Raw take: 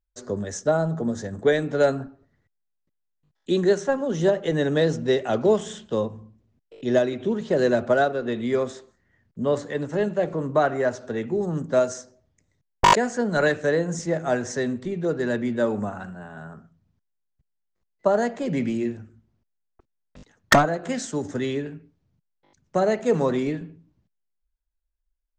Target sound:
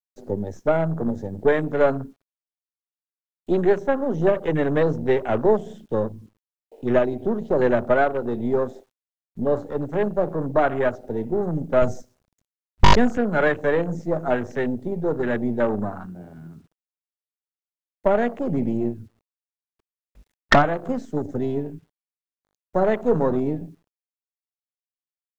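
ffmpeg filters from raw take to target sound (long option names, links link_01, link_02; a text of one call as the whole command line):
ffmpeg -i in.wav -filter_complex "[0:a]aeval=exprs='if(lt(val(0),0),0.447*val(0),val(0))':channel_layout=same,acrossover=split=5800[link_01][link_02];[link_02]acompressor=threshold=-50dB:ratio=4:attack=1:release=60[link_03];[link_01][link_03]amix=inputs=2:normalize=0,afwtdn=0.0158,asettb=1/sr,asplit=3[link_04][link_05][link_06];[link_04]atrim=end=11.824[link_07];[link_05]atrim=start=11.82:end=13.18,asetpts=PTS-STARTPTS,afade=type=in:duration=0.004:curve=qsin,afade=type=out:start_time=1.356:duration=0.004:curve=qsin,bass=frequency=250:gain=13,treble=frequency=4000:gain=9[link_08];[link_06]atrim=start=13.176[link_09];[link_07][link_08]acrossfade=duration=0.004:curve1=hsin:curve2=qsin[link_10];[link_10][link_09]acrossfade=duration=0.004:curve1=qsin:curve2=hsin,acontrast=28,acrusher=bits=10:mix=0:aa=0.000001,volume=-1dB" out.wav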